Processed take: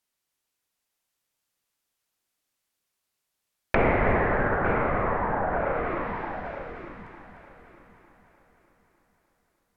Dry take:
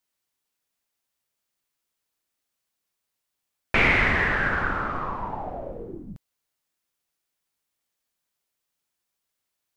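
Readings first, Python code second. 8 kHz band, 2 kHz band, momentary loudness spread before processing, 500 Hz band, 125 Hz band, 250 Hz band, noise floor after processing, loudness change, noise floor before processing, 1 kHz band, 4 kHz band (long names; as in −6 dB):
can't be measured, −6.0 dB, 19 LU, +7.0 dB, +2.0 dB, +3.0 dB, −82 dBFS, −3.0 dB, −82 dBFS, +2.5 dB, below −10 dB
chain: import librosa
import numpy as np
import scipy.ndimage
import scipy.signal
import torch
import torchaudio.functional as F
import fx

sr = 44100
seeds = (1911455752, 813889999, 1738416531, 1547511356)

y = fx.echo_heads(x, sr, ms=301, heads='first and third', feedback_pct=41, wet_db=-7)
y = fx.env_lowpass_down(y, sr, base_hz=1100.0, full_db=-23.5)
y = fx.dynamic_eq(y, sr, hz=590.0, q=1.1, threshold_db=-43.0, ratio=4.0, max_db=7)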